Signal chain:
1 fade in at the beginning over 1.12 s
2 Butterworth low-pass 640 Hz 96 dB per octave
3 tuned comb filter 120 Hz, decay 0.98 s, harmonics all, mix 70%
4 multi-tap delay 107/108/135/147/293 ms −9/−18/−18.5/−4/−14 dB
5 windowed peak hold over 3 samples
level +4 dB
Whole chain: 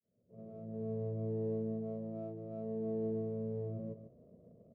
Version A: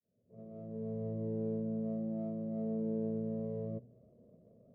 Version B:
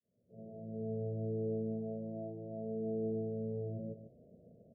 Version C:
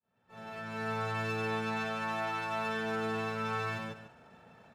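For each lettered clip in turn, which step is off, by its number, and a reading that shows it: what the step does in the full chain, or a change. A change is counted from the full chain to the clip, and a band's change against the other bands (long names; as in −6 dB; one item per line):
4, change in momentary loudness spread −2 LU
5, distortion level −25 dB
2, 1 kHz band +22.0 dB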